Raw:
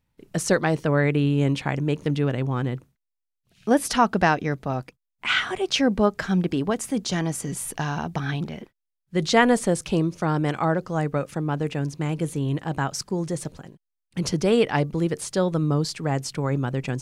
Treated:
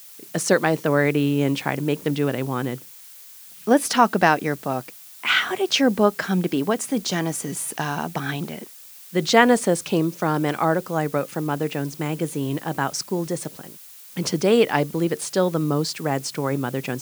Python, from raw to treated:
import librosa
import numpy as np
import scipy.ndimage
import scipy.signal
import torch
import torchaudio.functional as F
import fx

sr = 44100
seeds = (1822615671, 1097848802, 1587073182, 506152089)

y = scipy.signal.sosfilt(scipy.signal.butter(2, 190.0, 'highpass', fs=sr, output='sos'), x)
y = fx.dmg_noise_colour(y, sr, seeds[0], colour='blue', level_db=-47.0)
y = y * librosa.db_to_amplitude(3.0)